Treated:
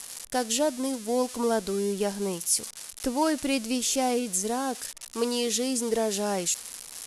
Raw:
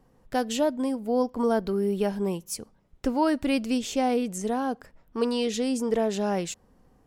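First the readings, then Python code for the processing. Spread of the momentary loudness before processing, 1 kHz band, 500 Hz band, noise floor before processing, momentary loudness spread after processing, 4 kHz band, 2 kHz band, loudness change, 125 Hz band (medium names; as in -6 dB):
8 LU, -1.0 dB, -1.5 dB, -62 dBFS, 6 LU, +4.5 dB, +0.5 dB, 0.0 dB, -4.0 dB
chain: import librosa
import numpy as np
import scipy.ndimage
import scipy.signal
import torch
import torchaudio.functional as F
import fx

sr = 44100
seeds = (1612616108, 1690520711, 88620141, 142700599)

y = x + 0.5 * 10.0 ** (-26.0 / 20.0) * np.diff(np.sign(x), prepend=np.sign(x[:1]))
y = scipy.signal.sosfilt(scipy.signal.ellip(4, 1.0, 80, 11000.0, 'lowpass', fs=sr, output='sos'), y)
y = fx.bass_treble(y, sr, bass_db=-4, treble_db=6)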